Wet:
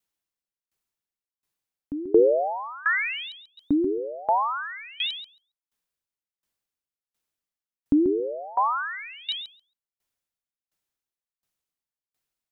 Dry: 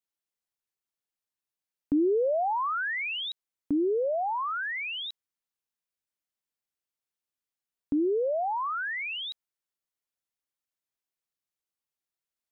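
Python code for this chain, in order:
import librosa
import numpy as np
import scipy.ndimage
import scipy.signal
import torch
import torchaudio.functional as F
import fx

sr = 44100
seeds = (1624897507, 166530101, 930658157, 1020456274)

y = fx.low_shelf(x, sr, hz=160.0, db=5.5)
y = fx.echo_feedback(y, sr, ms=137, feedback_pct=16, wet_db=-5)
y = fx.tremolo_decay(y, sr, direction='decaying', hz=1.4, depth_db=23)
y = y * librosa.db_to_amplitude(9.0)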